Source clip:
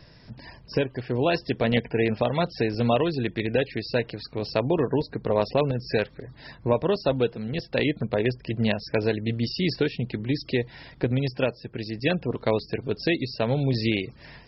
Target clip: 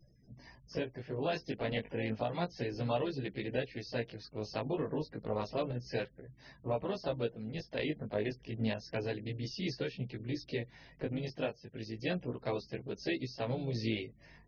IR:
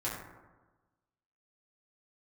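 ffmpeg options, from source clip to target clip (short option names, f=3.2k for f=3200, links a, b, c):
-filter_complex "[0:a]afftfilt=real='re*gte(hypot(re,im),0.00562)':imag='im*gte(hypot(re,im),0.00562)':win_size=1024:overlap=0.75,asplit=2[a][b];[b]asetrate=52444,aresample=44100,atempo=0.840896,volume=-10dB[c];[a][c]amix=inputs=2:normalize=0,flanger=delay=15:depth=4.4:speed=0.31,volume=-9dB"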